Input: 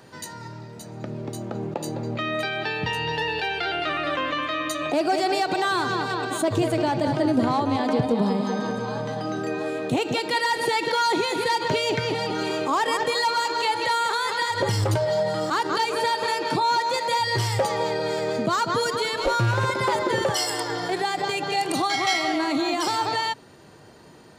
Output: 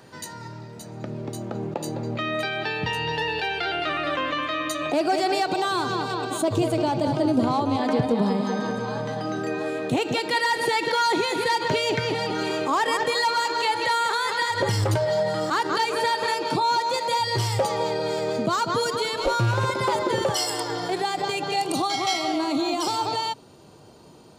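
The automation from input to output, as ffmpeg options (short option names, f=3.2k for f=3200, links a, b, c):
-af "asetnsamples=n=441:p=0,asendcmd='5.48 equalizer g -8.5;7.82 equalizer g 1.5;16.34 equalizer g -5;21.62 equalizer g -12.5',equalizer=f=1.8k:t=o:w=0.5:g=-0.5"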